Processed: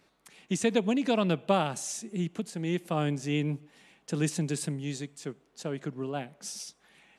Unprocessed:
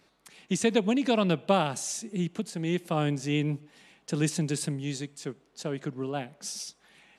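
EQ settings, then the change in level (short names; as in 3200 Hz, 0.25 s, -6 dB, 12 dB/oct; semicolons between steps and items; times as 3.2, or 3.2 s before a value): bell 4500 Hz -2.5 dB; -1.5 dB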